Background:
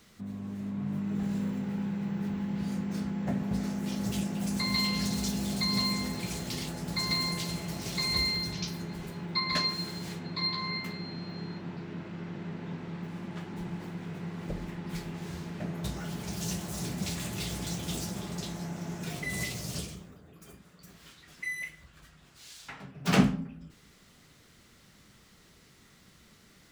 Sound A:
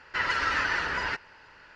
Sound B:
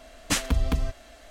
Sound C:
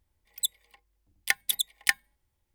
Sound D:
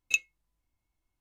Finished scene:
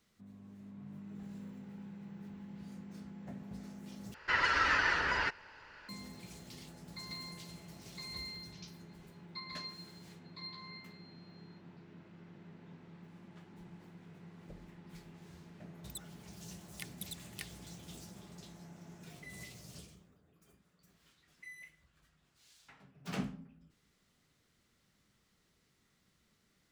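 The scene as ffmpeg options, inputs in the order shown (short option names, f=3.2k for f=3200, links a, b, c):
-filter_complex "[0:a]volume=-15.5dB[a];[3:a]acompressor=threshold=-30dB:ratio=6:attack=3.2:release=140:knee=1:detection=peak[b];[a]asplit=2[c][d];[c]atrim=end=4.144[e];[1:a]atrim=end=1.75,asetpts=PTS-STARTPTS,volume=-2.5dB[f];[d]atrim=start=5.886[g];[b]atrim=end=2.54,asetpts=PTS-STARTPTS,volume=-10.5dB,afade=t=in:d=0.004:c=hsin,afade=t=out:st=2.536:d=0.004:c=hsin,adelay=15520[h];[e][f]acrossfade=d=0.004:c1=hsin:c2=hsin[i];[i][g]acrossfade=d=0.004:c1=hsin:c2=hsin[j];[j][h]amix=inputs=2:normalize=0"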